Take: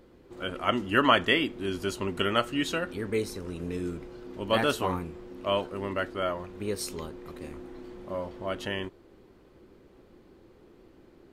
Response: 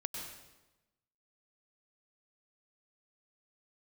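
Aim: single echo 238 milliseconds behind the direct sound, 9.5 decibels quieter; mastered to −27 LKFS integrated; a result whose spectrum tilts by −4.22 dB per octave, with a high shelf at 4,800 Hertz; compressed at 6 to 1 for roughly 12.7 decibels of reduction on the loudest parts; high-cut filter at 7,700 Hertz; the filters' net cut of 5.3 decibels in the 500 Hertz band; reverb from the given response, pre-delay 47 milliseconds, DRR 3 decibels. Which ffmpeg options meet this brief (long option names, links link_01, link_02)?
-filter_complex "[0:a]lowpass=7700,equalizer=frequency=500:width_type=o:gain=-7,highshelf=frequency=4800:gain=5,acompressor=threshold=-31dB:ratio=6,aecho=1:1:238:0.335,asplit=2[link_01][link_02];[1:a]atrim=start_sample=2205,adelay=47[link_03];[link_02][link_03]afir=irnorm=-1:irlink=0,volume=-3.5dB[link_04];[link_01][link_04]amix=inputs=2:normalize=0,volume=8dB"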